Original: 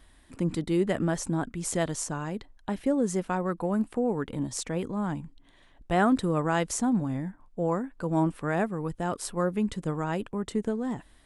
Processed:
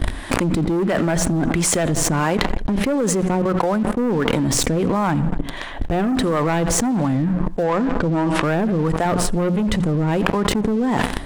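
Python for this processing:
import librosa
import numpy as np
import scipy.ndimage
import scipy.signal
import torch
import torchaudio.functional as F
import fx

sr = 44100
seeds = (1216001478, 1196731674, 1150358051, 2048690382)

p1 = fx.level_steps(x, sr, step_db=15, at=(3.27, 3.99))
p2 = fx.low_shelf(p1, sr, hz=360.0, db=9.5, at=(9.05, 9.81))
p3 = fx.harmonic_tremolo(p2, sr, hz=1.5, depth_pct=70, crossover_hz=530.0)
p4 = fx.high_shelf(p3, sr, hz=3800.0, db=-10.0)
p5 = fx.hum_notches(p4, sr, base_hz=60, count=3)
p6 = p5 + fx.echo_feedback(p5, sr, ms=85, feedback_pct=44, wet_db=-20.5, dry=0)
p7 = fx.leveller(p6, sr, passes=3)
p8 = fx.lowpass(p7, sr, hz=7800.0, slope=12, at=(7.63, 8.43))
p9 = fx.env_flatten(p8, sr, amount_pct=100)
y = F.gain(torch.from_numpy(p9), -1.5).numpy()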